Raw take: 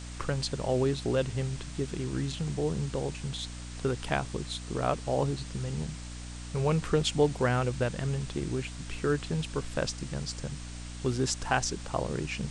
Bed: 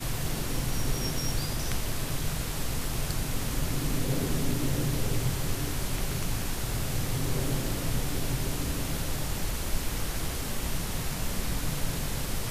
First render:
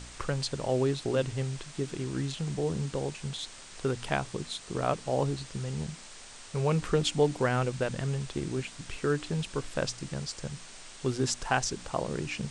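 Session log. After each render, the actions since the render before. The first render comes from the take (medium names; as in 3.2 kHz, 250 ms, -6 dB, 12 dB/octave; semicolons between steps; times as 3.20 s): de-hum 60 Hz, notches 5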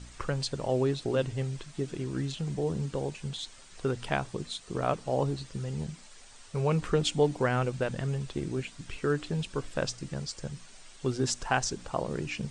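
noise reduction 8 dB, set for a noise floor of -48 dBFS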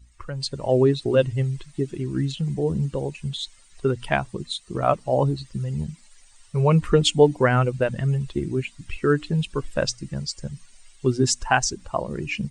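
expander on every frequency bin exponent 1.5; level rider gain up to 11.5 dB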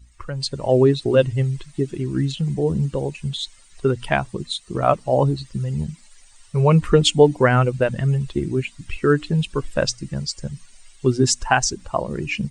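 trim +3 dB; peak limiter -2 dBFS, peak gain reduction 2.5 dB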